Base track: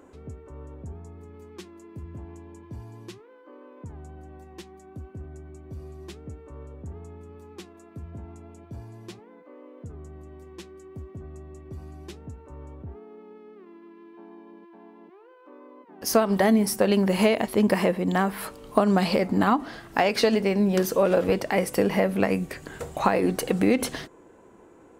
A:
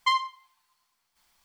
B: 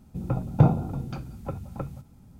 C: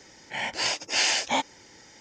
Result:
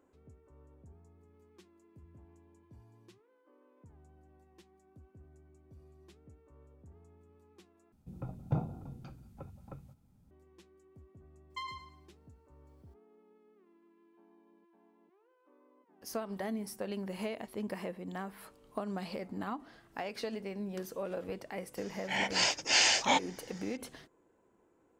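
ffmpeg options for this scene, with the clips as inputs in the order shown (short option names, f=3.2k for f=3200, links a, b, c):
-filter_complex "[0:a]volume=-17.5dB[a];[1:a]aecho=1:1:108|216|324|432:0.631|0.183|0.0531|0.0154[b];[a]asplit=2[c][d];[c]atrim=end=7.924[e];[2:a]atrim=end=2.39,asetpts=PTS-STARTPTS,volume=-14.5dB[f];[d]atrim=start=10.306[g];[b]atrim=end=1.44,asetpts=PTS-STARTPTS,volume=-18dB,afade=t=in:d=0.004:c=hsin,afade=t=out:st=1.436:d=0.004:c=hsin,adelay=11500[h];[3:a]atrim=end=2,asetpts=PTS-STARTPTS,volume=-2dB,afade=t=in:d=0.004:c=hsin,afade=t=out:st=1.996:d=0.004:c=hsin,adelay=21770[i];[e][f]acrossfade=d=0.004:c1=hsin:c2=hsin[j];[j][g]acrossfade=d=0.004:c1=hsin:c2=hsin[k];[k][h][i]amix=inputs=3:normalize=0"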